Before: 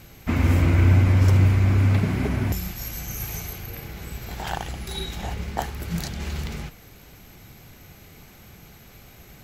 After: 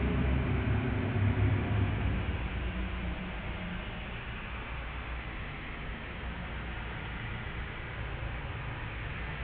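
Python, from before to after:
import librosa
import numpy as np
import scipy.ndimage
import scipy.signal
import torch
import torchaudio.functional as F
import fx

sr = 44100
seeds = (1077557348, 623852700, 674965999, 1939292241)

y = fx.delta_mod(x, sr, bps=16000, step_db=-26.0)
y = fx.paulstretch(y, sr, seeds[0], factor=8.9, window_s=0.25, from_s=2.3)
y = y * librosa.db_to_amplitude(-6.5)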